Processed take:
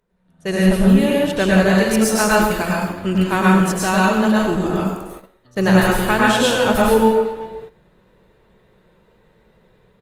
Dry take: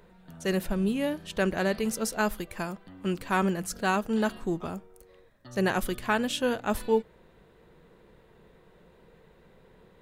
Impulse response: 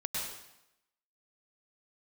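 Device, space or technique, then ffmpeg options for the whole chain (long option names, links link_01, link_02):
speakerphone in a meeting room: -filter_complex "[1:a]atrim=start_sample=2205[link_01];[0:a][link_01]afir=irnorm=-1:irlink=0,asplit=2[link_02][link_03];[link_03]adelay=370,highpass=300,lowpass=3400,asoftclip=type=hard:threshold=-17.5dB,volume=-15dB[link_04];[link_02][link_04]amix=inputs=2:normalize=0,dynaudnorm=framelen=130:gausssize=7:maxgain=11.5dB,agate=range=-13dB:threshold=-34dB:ratio=16:detection=peak" -ar 48000 -c:a libopus -b:a 32k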